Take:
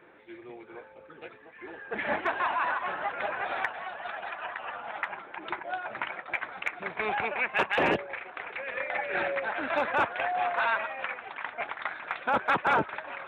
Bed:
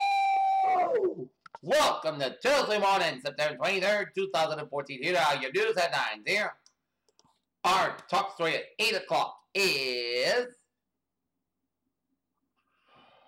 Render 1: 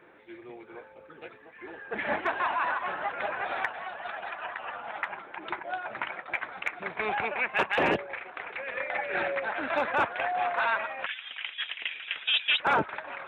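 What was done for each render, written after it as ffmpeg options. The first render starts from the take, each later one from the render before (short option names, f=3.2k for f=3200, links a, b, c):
-filter_complex "[0:a]asettb=1/sr,asplit=3[a][b][c];[a]atrim=end=11.064[d];[b]atrim=start=11.06:end=12.6,asetpts=PTS-STARTPTS,afade=t=in:d=0.004:c=qsin,afade=t=out:st=1.536:d=0.004:c=qsin,lowpass=f=3.4k:t=q:w=0.5098,lowpass=f=3.4k:t=q:w=0.6013,lowpass=f=3.4k:t=q:w=0.9,lowpass=f=3.4k:t=q:w=2.563,afreqshift=-4000[e];[c]atrim=start=12.596[f];[d][e]acrossfade=d=0.004:c1=hsin:c2=qsin[g];[g][f]acrossfade=d=0.004:c1=qsin:c2=hsin"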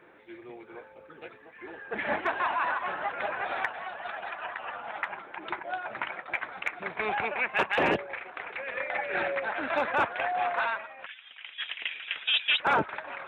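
-filter_complex "[0:a]asplit=3[a][b][c];[a]atrim=end=10.83,asetpts=PTS-STARTPTS,afade=t=out:st=10.57:d=0.26:silence=0.354813[d];[b]atrim=start=10.83:end=11.43,asetpts=PTS-STARTPTS,volume=-9dB[e];[c]atrim=start=11.43,asetpts=PTS-STARTPTS,afade=t=in:d=0.26:silence=0.354813[f];[d][e][f]concat=n=3:v=0:a=1"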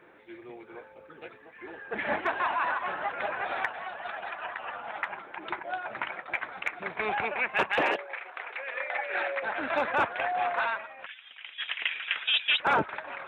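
-filter_complex "[0:a]asettb=1/sr,asplit=3[a][b][c];[a]atrim=end=7.814[d];[b]atrim=start=7.81:end=9.43,asetpts=PTS-STARTPTS,afade=t=in:d=0.004:c=qsin,afade=t=out:st=1.616:d=0.004:c=qsin,highpass=510[e];[c]atrim=start=9.426[f];[d][e]acrossfade=d=0.004:c1=hsin:c2=qsin[g];[g][f]acrossfade=d=0.004:c1=qsin:c2=hsin,asettb=1/sr,asplit=3[h][i][j];[h]atrim=end=11.684[k];[i]atrim=start=11.68:end=12.27,asetpts=PTS-STARTPTS,afade=t=in:d=0.004:c=qsin,afade=t=out:st=0.586:d=0.004:c=qsin,equalizer=f=1.3k:t=o:w=1.9:g=7[l];[j]atrim=start=12.266[m];[k][l]acrossfade=d=0.004:c1=hsin:c2=qsin[n];[n][m]acrossfade=d=0.004:c1=qsin:c2=hsin"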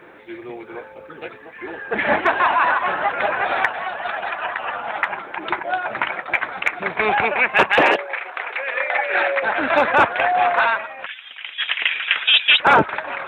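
-af "volume=11.5dB,alimiter=limit=-3dB:level=0:latency=1"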